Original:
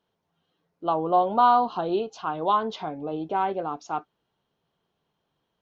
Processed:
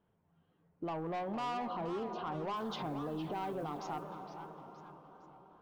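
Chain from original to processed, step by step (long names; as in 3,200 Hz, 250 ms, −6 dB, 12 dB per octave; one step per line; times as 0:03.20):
low-pass that shuts in the quiet parts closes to 2,600 Hz, open at −18 dBFS
noise that follows the level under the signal 33 dB
bass and treble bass +9 dB, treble −14 dB, from 0:02.55 treble +3 dB
convolution reverb RT60 5.5 s, pre-delay 106 ms, DRR 17.5 dB
soft clipping −22 dBFS, distortion −9 dB
brickwall limiter −29.5 dBFS, peak gain reduction 7.5 dB
downward compressor, threshold −35 dBFS, peak gain reduction 4.5 dB
feedback echo with a swinging delay time 463 ms, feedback 39%, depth 220 cents, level −10.5 dB
level −1 dB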